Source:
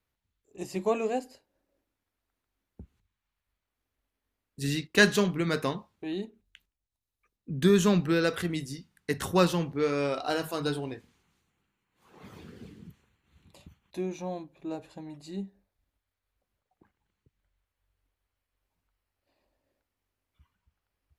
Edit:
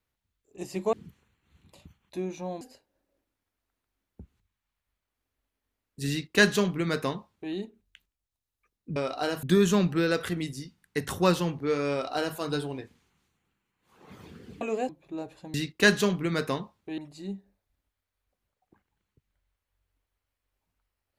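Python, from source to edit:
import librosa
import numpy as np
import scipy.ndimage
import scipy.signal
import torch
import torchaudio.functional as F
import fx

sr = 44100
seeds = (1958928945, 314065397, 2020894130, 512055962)

y = fx.edit(x, sr, fx.swap(start_s=0.93, length_s=0.28, other_s=12.74, other_length_s=1.68),
    fx.duplicate(start_s=4.69, length_s=1.44, to_s=15.07),
    fx.duplicate(start_s=10.03, length_s=0.47, to_s=7.56), tone=tone)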